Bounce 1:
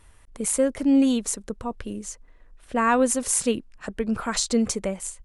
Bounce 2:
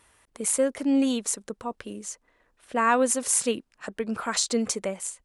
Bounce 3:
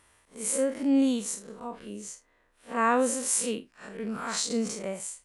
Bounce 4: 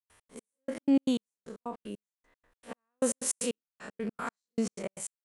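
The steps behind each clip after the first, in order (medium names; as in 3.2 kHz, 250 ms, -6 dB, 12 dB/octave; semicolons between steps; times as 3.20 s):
high-pass 340 Hz 6 dB/octave
spectral blur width 100 ms
trance gate ".x.x...x" 154 bpm -60 dB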